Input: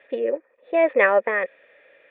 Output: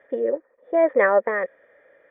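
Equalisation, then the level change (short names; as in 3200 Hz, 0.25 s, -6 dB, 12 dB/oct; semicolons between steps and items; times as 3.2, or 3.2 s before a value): polynomial smoothing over 41 samples; low shelf 190 Hz +4.5 dB; 0.0 dB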